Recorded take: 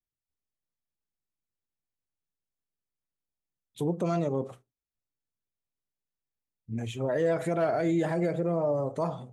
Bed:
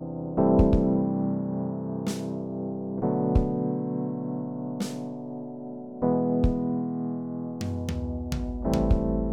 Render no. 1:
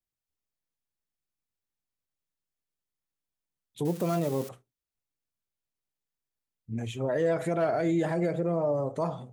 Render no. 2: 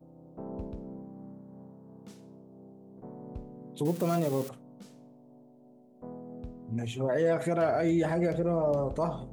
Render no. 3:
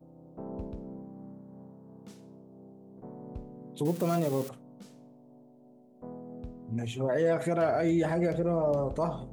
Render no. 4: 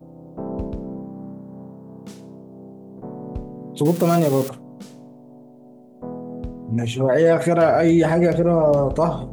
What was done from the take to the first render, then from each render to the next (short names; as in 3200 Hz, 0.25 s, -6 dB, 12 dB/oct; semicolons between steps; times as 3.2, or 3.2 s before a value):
3.85–4.49 switching spikes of -30.5 dBFS
add bed -19.5 dB
nothing audible
gain +11 dB